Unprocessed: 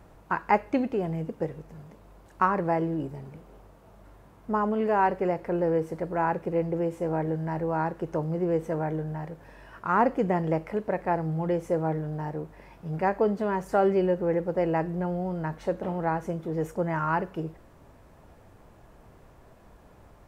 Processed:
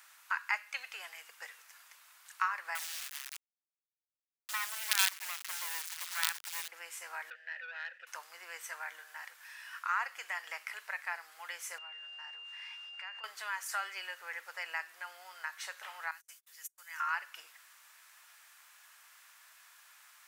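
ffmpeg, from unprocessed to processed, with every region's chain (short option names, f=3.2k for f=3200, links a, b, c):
-filter_complex "[0:a]asettb=1/sr,asplit=3[a][b][c];[a]atrim=end=2.754[d];[b]atrim=start=2.75:end=6.68,asetpts=PTS-STARTPTS,afade=t=in:d=0.004:c=qsin,afade=t=out:st=3.926:d=0.004:c=qsin,highpass=f=65:w=0.5412,highpass=f=65:w=1.3066,lowshelf=f=200:g=-4.5,acrusher=bits=4:dc=4:mix=0:aa=0.000001[e];[c]atrim=start=6.676[f];[d][e]acrossfade=d=0.004:c1=hsin:c2=qsin[g];[g][f]acrossfade=d=0.004:c1=qsin:c2=hsin,asettb=1/sr,asplit=3[h][i][j];[h]atrim=end=7.304[k];[i]atrim=start=7.3:end=8.07,asetpts=PTS-STARTPTS,afade=t=in:d=0.004:c=qsin,afade=t=out:st=0.766:d=0.004:c=qsin,asplit=3[l][m][n];[l]bandpass=f=530:t=q:w=8,volume=0dB[o];[m]bandpass=f=1.84k:t=q:w=8,volume=-6dB[p];[n]bandpass=f=2.48k:t=q:w=8,volume=-9dB[q];[o][p][q]amix=inputs=3:normalize=0,asplit=2[r][s];[s]highpass=f=720:p=1,volume=16dB,asoftclip=type=tanh:threshold=-25dB[t];[r][t]amix=inputs=2:normalize=0,lowpass=f=3.9k:p=1,volume=-6dB,agate=range=-33dB:threshold=-45dB:ratio=3:release=100:detection=peak[u];[j]atrim=start=8.066[v];[k][u]acrossfade=d=0.004:c1=hsin:c2=qsin[w];[w][v]acrossfade=d=0.004:c1=qsin:c2=hsin,asettb=1/sr,asplit=3[x][y][z];[x]atrim=end=11.784[aa];[y]atrim=start=11.78:end=13.24,asetpts=PTS-STARTPTS,afade=t=in:d=0.004:c=qsin,afade=t=out:st=1.456:d=0.004:c=qsin,acompressor=threshold=-37dB:ratio=5:attack=3.2:release=140:knee=1:detection=peak,aeval=exprs='val(0)+0.00224*sin(2*PI*2800*n/s)':c=same,highpass=150,lowpass=5.3k[ab];[z]atrim=start=13.236[ac];[aa][ab]acrossfade=d=0.004:c1=hsin:c2=qsin[ad];[ad][ac]acrossfade=d=0.004:c1=qsin:c2=hsin,asettb=1/sr,asplit=3[ae][af][ag];[ae]atrim=end=16.114[ah];[af]atrim=start=16.11:end=17,asetpts=PTS-STARTPTS,afade=t=in:d=0.004:c=qsin,afade=t=out:st=0.886:d=0.004:c=qsin,agate=range=-42dB:threshold=-34dB:ratio=16:release=100:detection=peak,aderivative[ai];[ag]atrim=start=16.996[aj];[ah][ai]acrossfade=d=0.004:c1=hsin:c2=qsin[ak];[ak][aj]acrossfade=d=0.004:c1=qsin:c2=hsin,highpass=f=1.4k:w=0.5412,highpass=f=1.4k:w=1.3066,highshelf=f=3.3k:g=9.5,acompressor=threshold=-43dB:ratio=1.5,volume=4dB"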